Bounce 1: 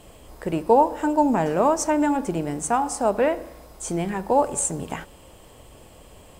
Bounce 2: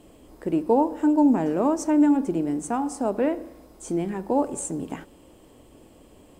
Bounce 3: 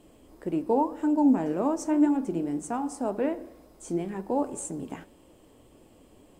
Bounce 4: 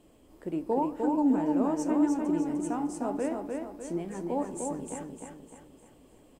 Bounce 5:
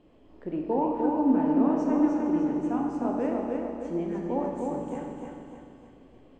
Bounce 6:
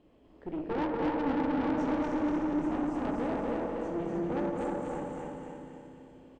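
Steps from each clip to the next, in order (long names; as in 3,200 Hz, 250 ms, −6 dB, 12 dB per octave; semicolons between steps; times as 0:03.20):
parametric band 290 Hz +12.5 dB 1.1 octaves; level −8 dB
flanger 1.9 Hz, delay 4.6 ms, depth 7.3 ms, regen +73%
repeating echo 302 ms, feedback 44%, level −4 dB; level −4 dB
high-frequency loss of the air 210 metres; four-comb reverb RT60 1.8 s, combs from 26 ms, DRR 1.5 dB; level +1 dB
tube saturation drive 29 dB, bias 0.65; repeating echo 241 ms, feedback 49%, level −3 dB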